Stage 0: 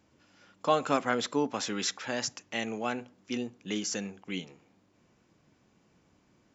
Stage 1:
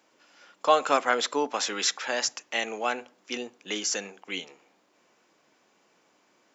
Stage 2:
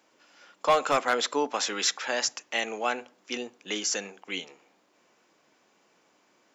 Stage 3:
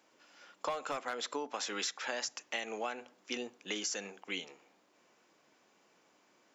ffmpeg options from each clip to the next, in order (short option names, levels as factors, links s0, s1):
-af "highpass=470,volume=2"
-af "volume=5.31,asoftclip=hard,volume=0.188"
-af "acompressor=threshold=0.0316:ratio=16,volume=0.708"